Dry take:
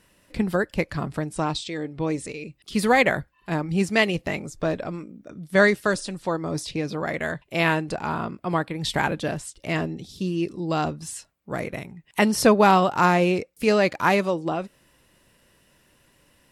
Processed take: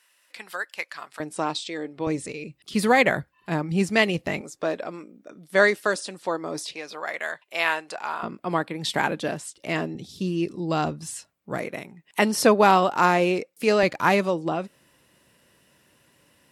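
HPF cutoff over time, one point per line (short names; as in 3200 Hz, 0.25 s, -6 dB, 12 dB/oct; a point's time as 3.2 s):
1200 Hz
from 1.2 s 280 Hz
from 2.07 s 92 Hz
from 4.41 s 320 Hz
from 6.74 s 730 Hz
from 8.23 s 190 Hz
from 9.95 s 93 Hz
from 11.58 s 220 Hz
from 13.83 s 93 Hz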